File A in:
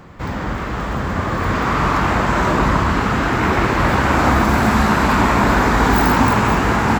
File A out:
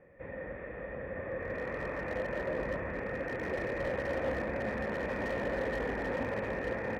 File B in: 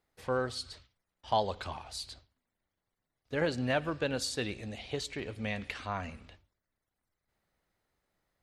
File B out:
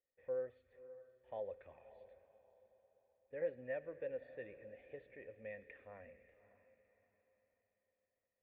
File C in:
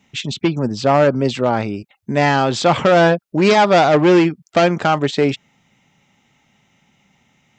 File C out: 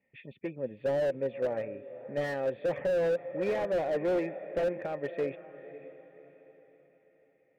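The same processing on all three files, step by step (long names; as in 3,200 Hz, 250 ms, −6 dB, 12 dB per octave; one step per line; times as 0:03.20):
formant resonators in series e
feedback delay with all-pass diffusion 568 ms, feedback 40%, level −15 dB
slew-rate limiting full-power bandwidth 47 Hz
level −4.5 dB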